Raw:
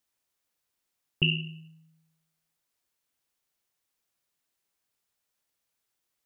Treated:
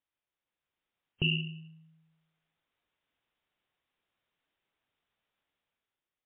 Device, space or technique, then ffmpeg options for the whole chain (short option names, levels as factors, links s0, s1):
low-bitrate web radio: -af "dynaudnorm=f=100:g=13:m=2.82,alimiter=limit=0.224:level=0:latency=1:release=21,volume=0.531" -ar 8000 -c:a libmp3lame -b:a 24k